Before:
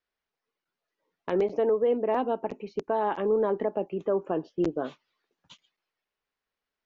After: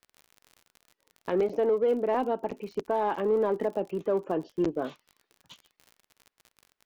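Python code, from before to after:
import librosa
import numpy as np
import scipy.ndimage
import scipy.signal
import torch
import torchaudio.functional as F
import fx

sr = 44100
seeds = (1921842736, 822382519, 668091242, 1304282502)

p1 = 10.0 ** (-31.5 / 20.0) * np.tanh(x / 10.0 ** (-31.5 / 20.0))
p2 = x + (p1 * 10.0 ** (-9.0 / 20.0))
p3 = fx.dmg_crackle(p2, sr, seeds[0], per_s=48.0, level_db=-38.0)
y = p3 * 10.0 ** (-1.5 / 20.0)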